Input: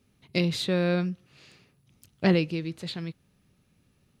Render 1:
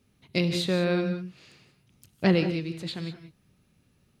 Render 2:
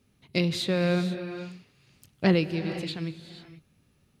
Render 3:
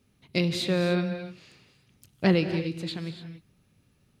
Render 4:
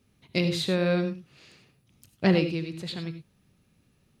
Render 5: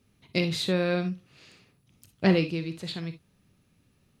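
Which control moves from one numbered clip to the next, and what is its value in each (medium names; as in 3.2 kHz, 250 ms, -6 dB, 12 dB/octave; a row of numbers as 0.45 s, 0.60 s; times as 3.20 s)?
gated-style reverb, gate: 210 ms, 510 ms, 310 ms, 120 ms, 80 ms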